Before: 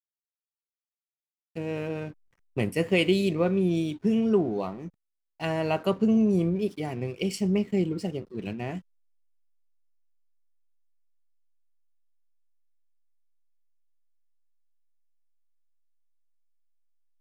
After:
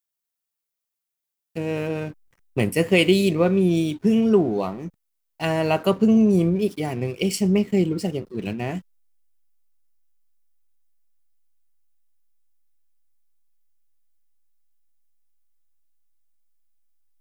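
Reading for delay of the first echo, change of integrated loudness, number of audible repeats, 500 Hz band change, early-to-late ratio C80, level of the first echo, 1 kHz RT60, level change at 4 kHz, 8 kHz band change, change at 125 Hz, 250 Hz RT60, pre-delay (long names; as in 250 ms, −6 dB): no echo audible, +5.5 dB, no echo audible, +5.5 dB, no reverb audible, no echo audible, no reverb audible, +6.5 dB, +9.5 dB, +5.5 dB, no reverb audible, no reverb audible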